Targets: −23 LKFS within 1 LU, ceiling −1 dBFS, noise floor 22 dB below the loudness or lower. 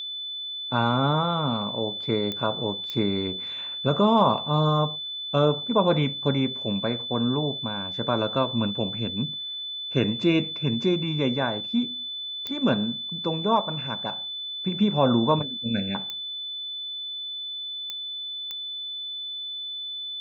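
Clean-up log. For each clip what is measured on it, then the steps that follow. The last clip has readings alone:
number of clicks 6; interfering tone 3,500 Hz; level of the tone −31 dBFS; integrated loudness −26.0 LKFS; sample peak −8.0 dBFS; target loudness −23.0 LKFS
→ click removal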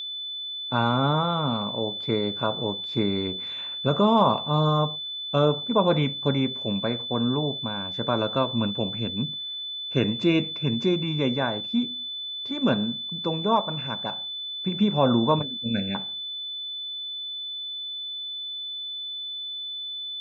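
number of clicks 0; interfering tone 3,500 Hz; level of the tone −31 dBFS
→ notch filter 3,500 Hz, Q 30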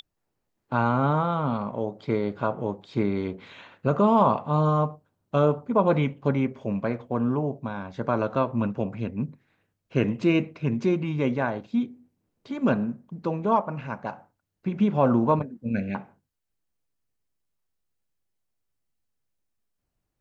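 interfering tone none found; integrated loudness −26.0 LKFS; sample peak −8.5 dBFS; target loudness −23.0 LKFS
→ level +3 dB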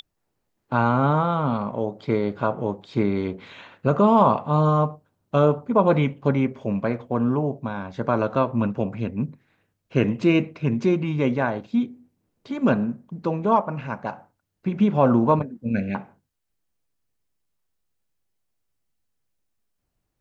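integrated loudness −23.0 LKFS; sample peak −5.5 dBFS; background noise floor −77 dBFS

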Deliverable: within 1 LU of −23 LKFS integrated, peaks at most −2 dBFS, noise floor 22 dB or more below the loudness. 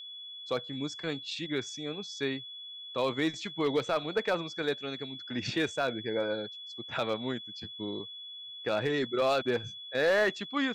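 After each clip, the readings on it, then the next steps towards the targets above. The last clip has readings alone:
share of clipped samples 0.4%; peaks flattened at −20.5 dBFS; interfering tone 3,400 Hz; level of the tone −42 dBFS; integrated loudness −32.5 LKFS; sample peak −20.5 dBFS; target loudness −23.0 LKFS
→ clipped peaks rebuilt −20.5 dBFS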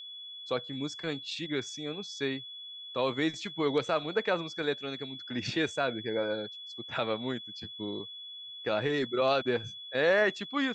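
share of clipped samples 0.0%; interfering tone 3,400 Hz; level of the tone −42 dBFS
→ notch filter 3,400 Hz, Q 30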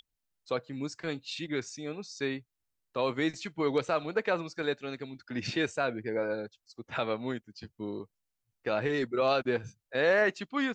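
interfering tone none found; integrated loudness −32.5 LKFS; sample peak −15.0 dBFS; target loudness −23.0 LKFS
→ level +9.5 dB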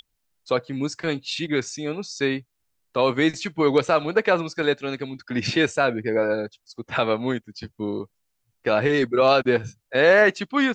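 integrated loudness −23.0 LKFS; sample peak −5.5 dBFS; background noise floor −75 dBFS

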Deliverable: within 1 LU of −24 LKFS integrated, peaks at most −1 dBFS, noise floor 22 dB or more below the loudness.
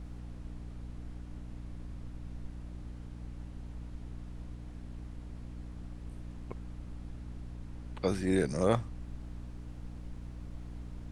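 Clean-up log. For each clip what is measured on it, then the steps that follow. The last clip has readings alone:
mains hum 60 Hz; hum harmonics up to 300 Hz; level of the hum −42 dBFS; background noise floor −46 dBFS; target noise floor −62 dBFS; integrated loudness −40.0 LKFS; sample peak −12.0 dBFS; target loudness −24.0 LKFS
→ hum removal 60 Hz, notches 5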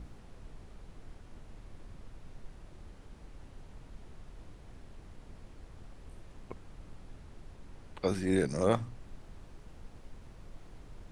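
mains hum none found; background noise floor −53 dBFS; target noise floor −54 dBFS
→ noise reduction from a noise print 6 dB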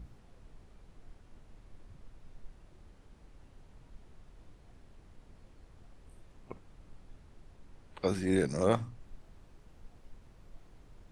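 background noise floor −59 dBFS; integrated loudness −31.5 LKFS; sample peak −12.5 dBFS; target loudness −24.0 LKFS
→ level +7.5 dB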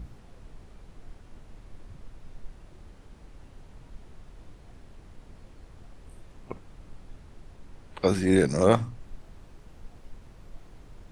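integrated loudness −24.0 LKFS; sample peak −5.0 dBFS; background noise floor −52 dBFS

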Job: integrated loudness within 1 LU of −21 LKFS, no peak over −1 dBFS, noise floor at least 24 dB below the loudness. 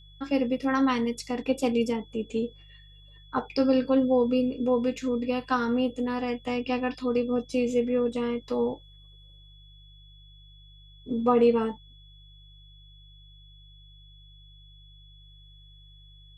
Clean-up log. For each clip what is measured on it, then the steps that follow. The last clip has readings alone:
mains hum 50 Hz; hum harmonics up to 150 Hz; level of the hum −50 dBFS; interfering tone 3,400 Hz; level of the tone −55 dBFS; integrated loudness −27.0 LKFS; sample peak −11.5 dBFS; target loudness −21.0 LKFS
→ hum removal 50 Hz, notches 3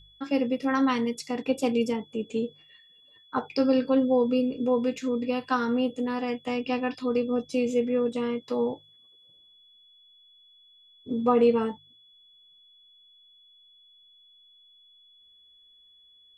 mains hum none found; interfering tone 3,400 Hz; level of the tone −55 dBFS
→ notch filter 3,400 Hz, Q 30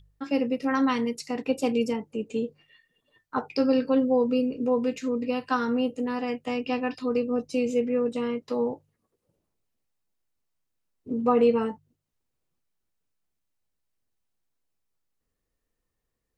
interfering tone none found; integrated loudness −27.0 LKFS; sample peak −11.5 dBFS; target loudness −21.0 LKFS
→ level +6 dB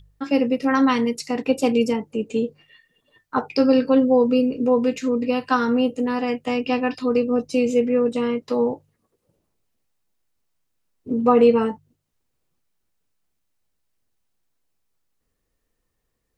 integrated loudness −21.0 LKFS; sample peak −5.5 dBFS; background noise floor −75 dBFS

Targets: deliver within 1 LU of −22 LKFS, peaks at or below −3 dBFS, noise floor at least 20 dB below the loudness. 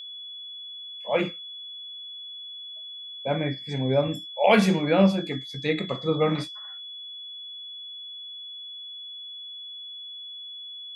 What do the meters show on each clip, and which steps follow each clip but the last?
interfering tone 3,400 Hz; level of the tone −37 dBFS; integrated loudness −28.5 LKFS; sample peak −6.0 dBFS; target loudness −22.0 LKFS
→ notch filter 3,400 Hz, Q 30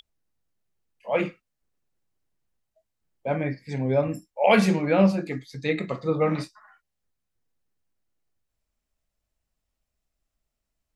interfering tone none found; integrated loudness −24.5 LKFS; sample peak −6.0 dBFS; target loudness −22.0 LKFS
→ level +2.5 dB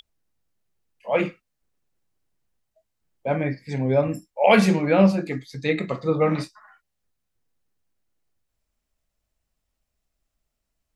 integrated loudness −22.0 LKFS; sample peak −3.5 dBFS; background noise floor −80 dBFS

